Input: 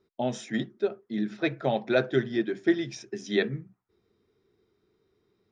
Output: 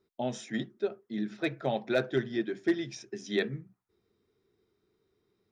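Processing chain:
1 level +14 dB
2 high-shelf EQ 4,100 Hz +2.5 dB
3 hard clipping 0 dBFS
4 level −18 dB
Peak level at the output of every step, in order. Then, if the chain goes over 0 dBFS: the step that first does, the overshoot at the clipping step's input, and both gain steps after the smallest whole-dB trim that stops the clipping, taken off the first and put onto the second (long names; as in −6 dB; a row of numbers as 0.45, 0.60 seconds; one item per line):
+3.5, +3.5, 0.0, −18.0 dBFS
step 1, 3.5 dB
step 1 +10 dB, step 4 −14 dB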